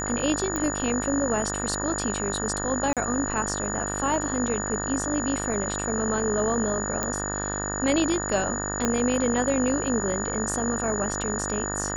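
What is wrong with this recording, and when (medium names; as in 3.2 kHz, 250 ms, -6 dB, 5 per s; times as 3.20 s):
buzz 50 Hz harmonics 37 -32 dBFS
whine 6.9 kHz -31 dBFS
0.56 s: pop -14 dBFS
2.93–2.97 s: dropout 37 ms
7.03 s: pop -11 dBFS
8.85 s: pop -9 dBFS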